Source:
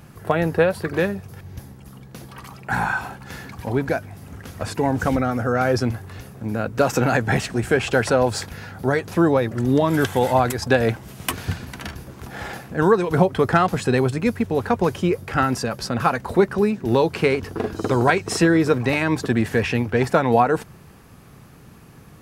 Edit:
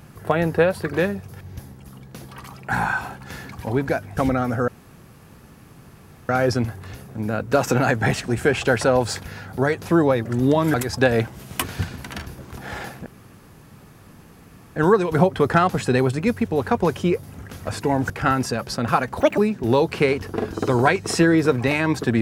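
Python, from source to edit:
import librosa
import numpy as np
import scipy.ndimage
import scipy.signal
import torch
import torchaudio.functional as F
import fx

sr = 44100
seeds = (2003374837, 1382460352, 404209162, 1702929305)

y = fx.edit(x, sr, fx.move(start_s=4.17, length_s=0.87, to_s=15.22),
    fx.insert_room_tone(at_s=5.55, length_s=1.61),
    fx.cut(start_s=10.0, length_s=0.43),
    fx.insert_room_tone(at_s=12.75, length_s=1.7),
    fx.speed_span(start_s=16.32, length_s=0.28, speed=1.55), tone=tone)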